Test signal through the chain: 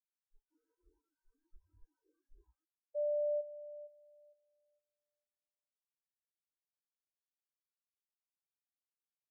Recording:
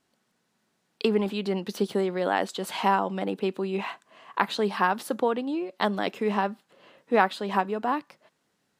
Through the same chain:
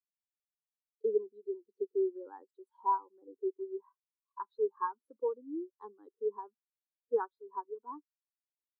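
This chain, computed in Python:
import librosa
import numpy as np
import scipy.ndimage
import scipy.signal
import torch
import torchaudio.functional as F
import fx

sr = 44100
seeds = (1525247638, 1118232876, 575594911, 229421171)

y = fx.fixed_phaser(x, sr, hz=660.0, stages=6)
y = fx.noise_reduce_blind(y, sr, reduce_db=22)
y = fx.spectral_expand(y, sr, expansion=2.5)
y = y * 10.0 ** (-8.0 / 20.0)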